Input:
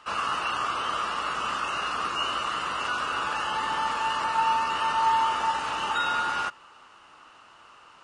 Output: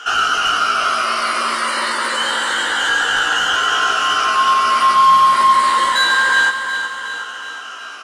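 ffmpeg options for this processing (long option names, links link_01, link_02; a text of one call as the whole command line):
ffmpeg -i in.wav -filter_complex "[0:a]afftfilt=real='re*pow(10,12/40*sin(2*PI*(0.89*log(max(b,1)*sr/1024/100)/log(2)-(-0.27)*(pts-256)/sr)))':imag='im*pow(10,12/40*sin(2*PI*(0.89*log(max(b,1)*sr/1024/100)/log(2)-(-0.27)*(pts-256)/sr)))':win_size=1024:overlap=0.75,highpass=frequency=57:width=0.5412,highpass=frequency=57:width=1.3066,highshelf=frequency=5000:gain=7,asplit=2[link_01][link_02];[link_02]acompressor=threshold=-36dB:ratio=6,volume=2dB[link_03];[link_01][link_03]amix=inputs=2:normalize=0,afreqshift=170,asoftclip=type=tanh:threshold=-18dB,asplit=2[link_04][link_05];[link_05]adelay=17,volume=-5.5dB[link_06];[link_04][link_06]amix=inputs=2:normalize=0,asplit=2[link_07][link_08];[link_08]aecho=0:1:366|732|1098|1464|1830|2196|2562:0.355|0.206|0.119|0.0692|0.0402|0.0233|0.0135[link_09];[link_07][link_09]amix=inputs=2:normalize=0,volume=6.5dB" out.wav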